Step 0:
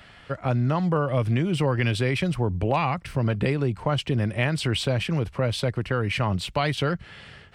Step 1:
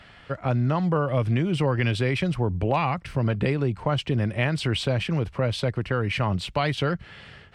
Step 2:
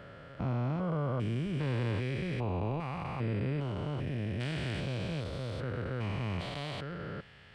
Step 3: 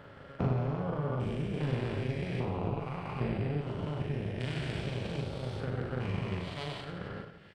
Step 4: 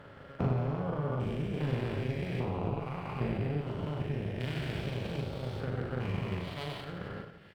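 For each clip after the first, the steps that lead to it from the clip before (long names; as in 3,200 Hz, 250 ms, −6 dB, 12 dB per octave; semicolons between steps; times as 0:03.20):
high-shelf EQ 9,500 Hz −10.5 dB
spectrum averaged block by block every 400 ms; level −6.5 dB
amplitude modulation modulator 280 Hz, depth 60%; transient designer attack +9 dB, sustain −7 dB; reverse bouncing-ball delay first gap 40 ms, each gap 1.4×, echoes 5
running median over 5 samples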